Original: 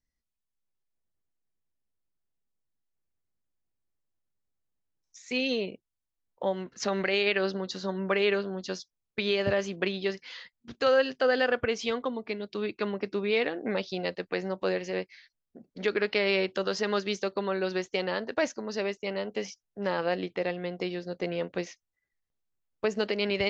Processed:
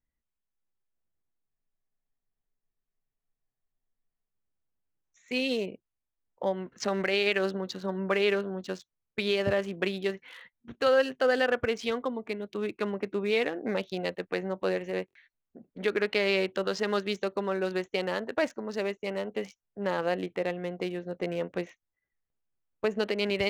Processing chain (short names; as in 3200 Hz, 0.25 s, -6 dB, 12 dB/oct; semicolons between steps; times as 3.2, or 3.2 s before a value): Wiener smoothing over 9 samples; spectral freeze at 1.49, 2.82 s; stuck buffer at 15.06, samples 1024, times 3